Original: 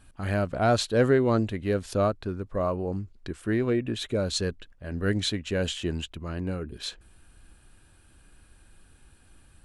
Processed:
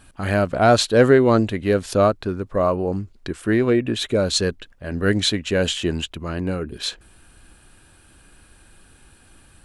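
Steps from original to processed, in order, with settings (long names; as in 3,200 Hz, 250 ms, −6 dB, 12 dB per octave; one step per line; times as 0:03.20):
low-shelf EQ 130 Hz −6.5 dB
level +8.5 dB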